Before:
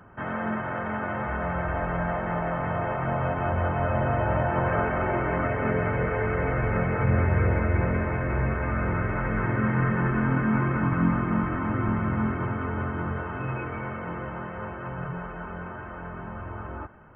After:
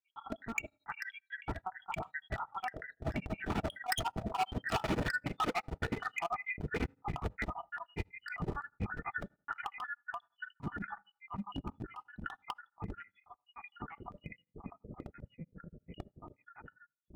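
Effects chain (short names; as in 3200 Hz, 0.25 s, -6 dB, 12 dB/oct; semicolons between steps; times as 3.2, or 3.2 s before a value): random spectral dropouts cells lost 84%; Doppler pass-by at 5.14, 20 m/s, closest 20 m; in parallel at +2.5 dB: compressor 20:1, threshold -49 dBFS, peak gain reduction 26.5 dB; on the sum: low shelf 140 Hz +6 dB; LPC vocoder at 8 kHz pitch kept; overloaded stage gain 31.5 dB; high shelf 2200 Hz +10.5 dB; notch comb 540 Hz; on a send at -22.5 dB: reverb RT60 0.45 s, pre-delay 3 ms; on the sum: beating tremolo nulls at 12 Hz; gain +4 dB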